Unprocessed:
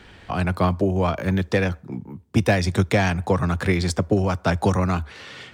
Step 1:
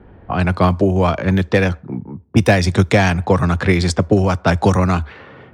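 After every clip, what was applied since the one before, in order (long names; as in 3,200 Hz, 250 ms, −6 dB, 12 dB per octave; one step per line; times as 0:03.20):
low-pass that shuts in the quiet parts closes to 680 Hz, open at −16.5 dBFS
level +6 dB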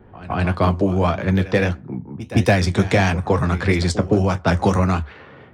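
backwards echo 165 ms −16 dB
flanger 1.6 Hz, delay 7.8 ms, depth 8.1 ms, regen −57%
level +1 dB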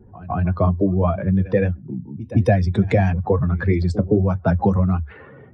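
expanding power law on the bin magnitudes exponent 1.8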